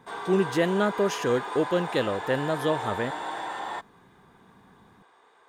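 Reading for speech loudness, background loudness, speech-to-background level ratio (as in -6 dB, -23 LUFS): -27.0 LUFS, -34.0 LUFS, 7.0 dB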